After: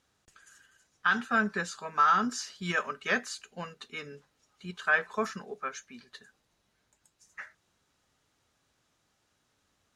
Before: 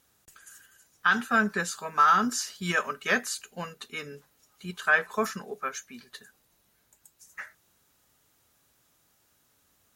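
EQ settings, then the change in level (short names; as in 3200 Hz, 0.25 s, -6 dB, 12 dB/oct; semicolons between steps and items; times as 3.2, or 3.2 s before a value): LPF 6200 Hz 12 dB/oct; -3.0 dB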